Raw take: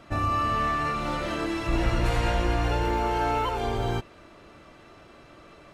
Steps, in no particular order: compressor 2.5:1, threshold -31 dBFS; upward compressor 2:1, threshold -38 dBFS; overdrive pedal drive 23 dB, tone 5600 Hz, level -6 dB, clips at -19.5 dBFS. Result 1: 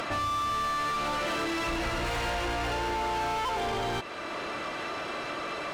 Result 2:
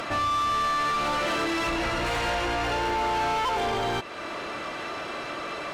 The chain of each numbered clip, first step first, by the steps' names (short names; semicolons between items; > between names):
upward compressor > overdrive pedal > compressor; compressor > upward compressor > overdrive pedal